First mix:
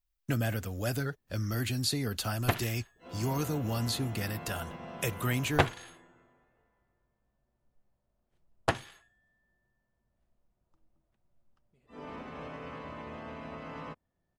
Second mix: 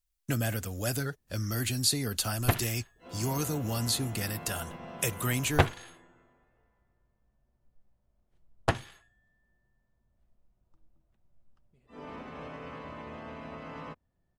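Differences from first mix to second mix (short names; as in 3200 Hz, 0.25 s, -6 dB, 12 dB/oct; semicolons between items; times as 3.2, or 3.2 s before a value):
speech: add bell 9300 Hz +8.5 dB 1.6 oct; first sound: add low shelf 150 Hz +8 dB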